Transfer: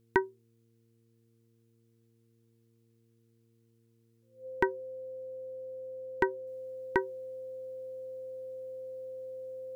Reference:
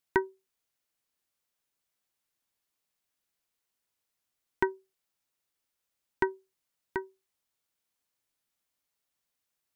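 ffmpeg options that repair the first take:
-af "bandreject=f=114.7:t=h:w=4,bandreject=f=229.4:t=h:w=4,bandreject=f=344.1:t=h:w=4,bandreject=f=458.8:t=h:w=4,bandreject=f=520:w=30,asetnsamples=n=441:p=0,asendcmd='6.47 volume volume -5.5dB',volume=0dB"

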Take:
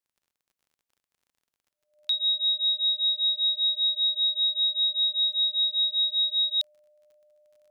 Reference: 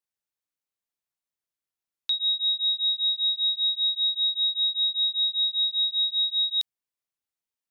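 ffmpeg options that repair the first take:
-af "adeclick=t=4,bandreject=f=600:w=30"

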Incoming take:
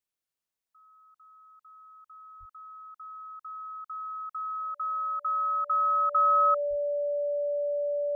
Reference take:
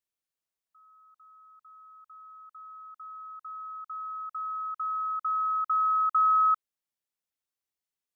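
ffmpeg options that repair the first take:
-filter_complex "[0:a]bandreject=f=580:w=30,asplit=3[a][b][c];[a]afade=t=out:st=2.39:d=0.02[d];[b]highpass=f=140:w=0.5412,highpass=f=140:w=1.3066,afade=t=in:st=2.39:d=0.02,afade=t=out:st=2.51:d=0.02[e];[c]afade=t=in:st=2.51:d=0.02[f];[d][e][f]amix=inputs=3:normalize=0,asplit=3[g][h][i];[g]afade=t=out:st=6.69:d=0.02[j];[h]highpass=f=140:w=0.5412,highpass=f=140:w=1.3066,afade=t=in:st=6.69:d=0.02,afade=t=out:st=6.81:d=0.02[k];[i]afade=t=in:st=6.81:d=0.02[l];[j][k][l]amix=inputs=3:normalize=0"

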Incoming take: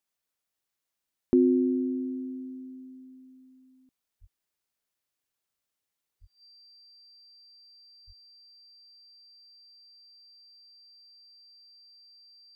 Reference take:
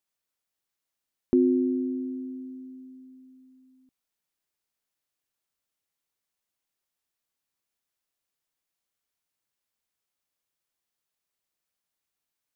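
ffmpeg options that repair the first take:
-filter_complex "[0:a]bandreject=f=4.7k:w=30,asplit=3[a][b][c];[a]afade=t=out:st=4.2:d=0.02[d];[b]highpass=f=140:w=0.5412,highpass=f=140:w=1.3066,afade=t=in:st=4.2:d=0.02,afade=t=out:st=4.32:d=0.02[e];[c]afade=t=in:st=4.32:d=0.02[f];[d][e][f]amix=inputs=3:normalize=0,asplit=3[g][h][i];[g]afade=t=out:st=6.2:d=0.02[j];[h]highpass=f=140:w=0.5412,highpass=f=140:w=1.3066,afade=t=in:st=6.2:d=0.02,afade=t=out:st=6.32:d=0.02[k];[i]afade=t=in:st=6.32:d=0.02[l];[j][k][l]amix=inputs=3:normalize=0,asplit=3[m][n][o];[m]afade=t=out:st=8.06:d=0.02[p];[n]highpass=f=140:w=0.5412,highpass=f=140:w=1.3066,afade=t=in:st=8.06:d=0.02,afade=t=out:st=8.18:d=0.02[q];[o]afade=t=in:st=8.18:d=0.02[r];[p][q][r]amix=inputs=3:normalize=0"

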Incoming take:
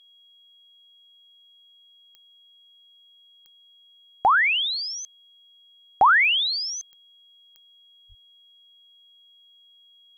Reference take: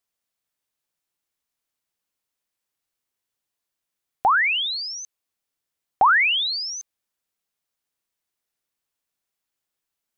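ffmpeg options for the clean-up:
-filter_complex "[0:a]adeclick=t=4,bandreject=f=3.3k:w=30,asplit=3[a][b][c];[a]afade=t=out:st=8.08:d=0.02[d];[b]highpass=f=140:w=0.5412,highpass=f=140:w=1.3066,afade=t=in:st=8.08:d=0.02,afade=t=out:st=8.2:d=0.02[e];[c]afade=t=in:st=8.2:d=0.02[f];[d][e][f]amix=inputs=3:normalize=0"

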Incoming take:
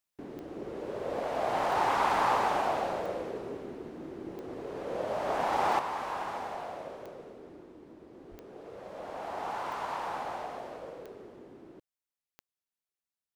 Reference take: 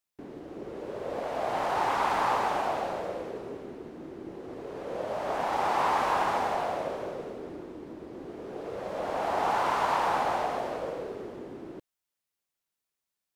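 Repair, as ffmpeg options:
-filter_complex "[0:a]adeclick=t=4,asplit=3[a][b][c];[a]afade=t=out:st=8.3:d=0.02[d];[b]highpass=f=140:w=0.5412,highpass=f=140:w=1.3066,afade=t=in:st=8.3:d=0.02,afade=t=out:st=8.42:d=0.02[e];[c]afade=t=in:st=8.42:d=0.02[f];[d][e][f]amix=inputs=3:normalize=0,asetnsamples=n=441:p=0,asendcmd='5.79 volume volume 9dB',volume=0dB"

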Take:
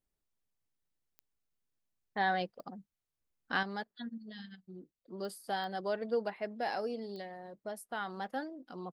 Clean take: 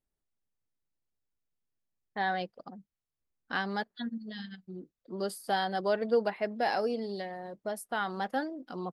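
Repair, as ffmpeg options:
-af "adeclick=t=4,asetnsamples=n=441:p=0,asendcmd='3.63 volume volume 6dB',volume=0dB"

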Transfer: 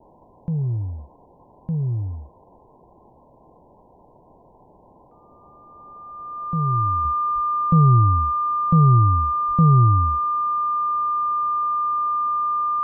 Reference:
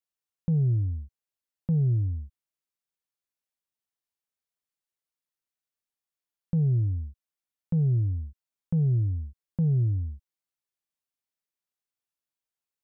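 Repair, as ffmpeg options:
-filter_complex "[0:a]bandreject=f=1.2k:w=30,asplit=3[a][b][c];[a]afade=t=out:st=7.34:d=0.02[d];[b]highpass=f=140:w=0.5412,highpass=f=140:w=1.3066,afade=t=in:st=7.34:d=0.02,afade=t=out:st=7.46:d=0.02[e];[c]afade=t=in:st=7.46:d=0.02[f];[d][e][f]amix=inputs=3:normalize=0,asplit=3[g][h][i];[g]afade=t=out:st=9.47:d=0.02[j];[h]highpass=f=140:w=0.5412,highpass=f=140:w=1.3066,afade=t=in:st=9.47:d=0.02,afade=t=out:st=9.59:d=0.02[k];[i]afade=t=in:st=9.59:d=0.02[l];[j][k][l]amix=inputs=3:normalize=0,afwtdn=0.011,asetnsamples=n=441:p=0,asendcmd='7.05 volume volume -9dB',volume=0dB"

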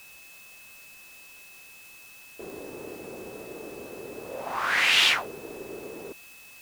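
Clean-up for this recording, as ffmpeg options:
-af "adeclick=t=4,bandreject=f=2.6k:w=30,afftdn=nr=24:nf=-49"

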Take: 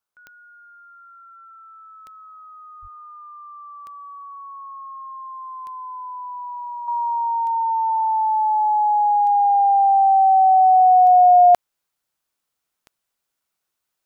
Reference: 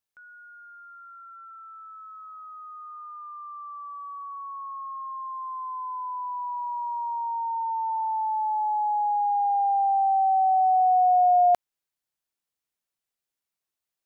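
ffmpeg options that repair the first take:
-filter_complex "[0:a]adeclick=t=4,asplit=3[a][b][c];[a]afade=t=out:st=2.81:d=0.02[d];[b]highpass=f=140:w=0.5412,highpass=f=140:w=1.3066,afade=t=in:st=2.81:d=0.02,afade=t=out:st=2.93:d=0.02[e];[c]afade=t=in:st=2.93:d=0.02[f];[d][e][f]amix=inputs=3:normalize=0,agate=range=-21dB:threshold=-72dB,asetnsamples=n=441:p=0,asendcmd='6.88 volume volume -7.5dB',volume=0dB"

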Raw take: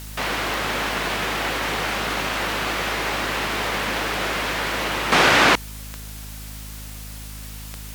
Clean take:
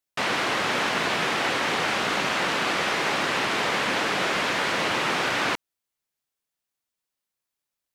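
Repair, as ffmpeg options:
-af "adeclick=t=4,bandreject=f=52.5:t=h:w=4,bandreject=f=105:t=h:w=4,bandreject=f=157.5:t=h:w=4,bandreject=f=210:t=h:w=4,bandreject=f=262.5:t=h:w=4,afwtdn=0.01,asetnsamples=n=441:p=0,asendcmd='5.12 volume volume -10dB',volume=0dB"

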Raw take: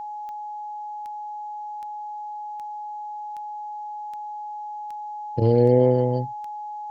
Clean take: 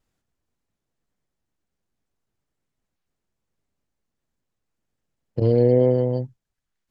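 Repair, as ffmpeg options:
-af "adeclick=t=4,bandreject=f=840:w=30,agate=range=-21dB:threshold=-26dB"

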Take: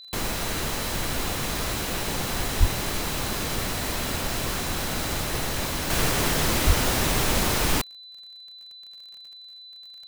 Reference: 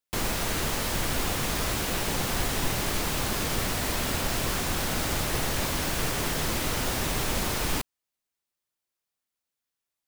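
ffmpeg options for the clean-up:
-filter_complex "[0:a]adeclick=t=4,bandreject=f=4k:w=30,asplit=3[a][b][c];[a]afade=t=out:st=2.59:d=0.02[d];[b]highpass=f=140:w=0.5412,highpass=f=140:w=1.3066,afade=t=in:st=2.59:d=0.02,afade=t=out:st=2.71:d=0.02[e];[c]afade=t=in:st=2.71:d=0.02[f];[d][e][f]amix=inputs=3:normalize=0,asplit=3[g][h][i];[g]afade=t=out:st=6.66:d=0.02[j];[h]highpass=f=140:w=0.5412,highpass=f=140:w=1.3066,afade=t=in:st=6.66:d=0.02,afade=t=out:st=6.78:d=0.02[k];[i]afade=t=in:st=6.78:d=0.02[l];[j][k][l]amix=inputs=3:normalize=0,asetnsamples=n=441:p=0,asendcmd='5.9 volume volume -5dB',volume=0dB"

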